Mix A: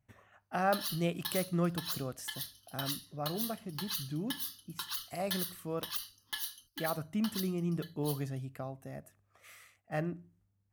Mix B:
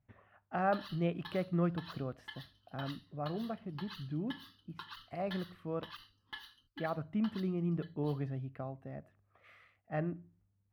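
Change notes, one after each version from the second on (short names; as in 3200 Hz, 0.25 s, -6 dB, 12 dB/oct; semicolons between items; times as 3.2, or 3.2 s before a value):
master: add air absorption 390 m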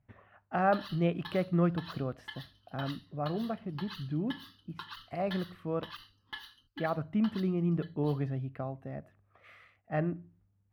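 speech +4.5 dB; background +3.5 dB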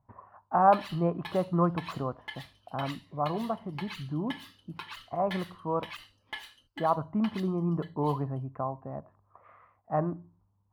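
speech: add synth low-pass 1000 Hz, resonance Q 7; background: remove fixed phaser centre 2300 Hz, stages 6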